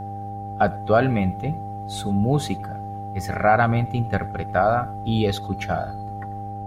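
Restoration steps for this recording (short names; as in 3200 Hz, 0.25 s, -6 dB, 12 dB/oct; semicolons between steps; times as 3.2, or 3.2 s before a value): de-hum 102.1 Hz, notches 6; notch 790 Hz, Q 30; inverse comb 95 ms -23 dB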